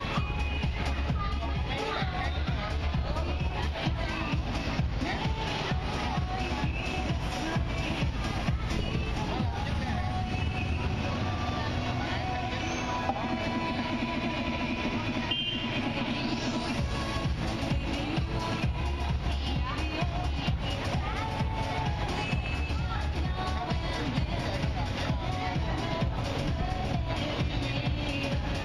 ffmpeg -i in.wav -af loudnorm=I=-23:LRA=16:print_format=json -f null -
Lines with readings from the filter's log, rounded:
"input_i" : "-31.1",
"input_tp" : "-15.1",
"input_lra" : "0.9",
"input_thresh" : "-41.1",